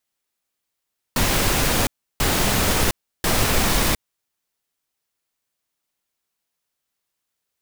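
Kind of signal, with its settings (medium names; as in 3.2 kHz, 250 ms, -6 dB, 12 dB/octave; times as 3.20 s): noise bursts pink, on 0.71 s, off 0.33 s, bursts 3, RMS -19 dBFS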